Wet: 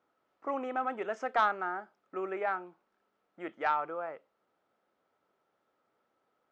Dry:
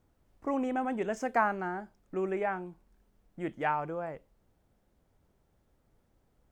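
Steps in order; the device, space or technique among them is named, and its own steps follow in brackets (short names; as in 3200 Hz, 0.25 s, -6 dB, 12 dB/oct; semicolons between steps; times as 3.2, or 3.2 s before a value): intercom (BPF 430–3800 Hz; bell 1300 Hz +10.5 dB 0.2 oct; soft clip -16.5 dBFS, distortion -18 dB)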